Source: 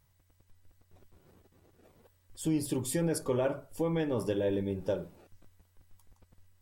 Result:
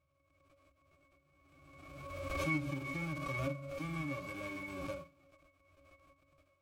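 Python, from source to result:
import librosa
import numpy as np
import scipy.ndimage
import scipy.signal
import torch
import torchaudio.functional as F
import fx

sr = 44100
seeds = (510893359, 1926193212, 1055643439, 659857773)

y = fx.envelope_flatten(x, sr, power=0.1)
y = fx.octave_resonator(y, sr, note='C#', decay_s=0.16)
y = fx.pre_swell(y, sr, db_per_s=33.0)
y = F.gain(torch.from_numpy(y), 9.0).numpy()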